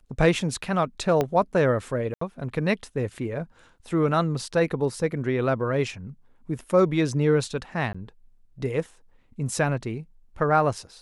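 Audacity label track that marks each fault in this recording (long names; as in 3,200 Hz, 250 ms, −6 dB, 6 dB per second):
1.210000	1.210000	click −11 dBFS
2.140000	2.210000	drop-out 74 ms
7.930000	7.950000	drop-out 15 ms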